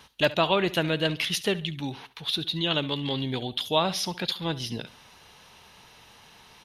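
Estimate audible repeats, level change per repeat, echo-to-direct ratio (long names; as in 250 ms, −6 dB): 2, −8.5 dB, −17.5 dB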